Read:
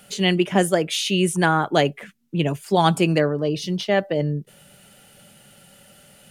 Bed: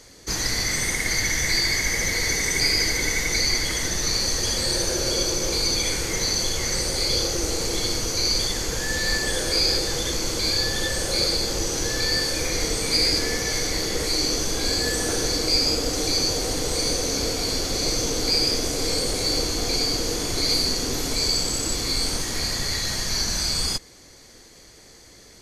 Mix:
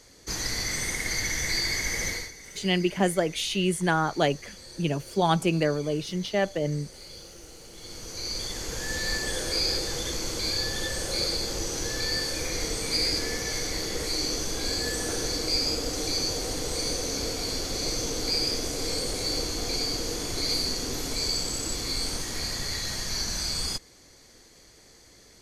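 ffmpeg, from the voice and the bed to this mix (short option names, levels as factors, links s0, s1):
-filter_complex "[0:a]adelay=2450,volume=0.531[s0];[1:a]volume=3.55,afade=t=out:st=2.08:d=0.23:silence=0.149624,afade=t=in:st=7.74:d=1.19:silence=0.149624[s1];[s0][s1]amix=inputs=2:normalize=0"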